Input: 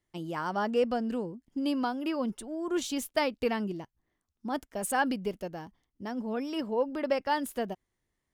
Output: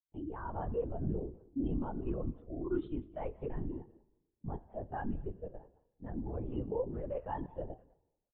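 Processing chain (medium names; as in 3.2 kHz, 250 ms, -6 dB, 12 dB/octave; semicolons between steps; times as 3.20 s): treble shelf 2.1 kHz -12 dB; in parallel at 0 dB: level held to a coarse grid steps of 20 dB; on the sum: peak limiter -22 dBFS, peak gain reduction 7.5 dB; speakerphone echo 200 ms, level -13 dB; reverberation RT60 1.5 s, pre-delay 40 ms, DRR 11 dB; LPC vocoder at 8 kHz whisper; spectral contrast expander 1.5:1; trim -6 dB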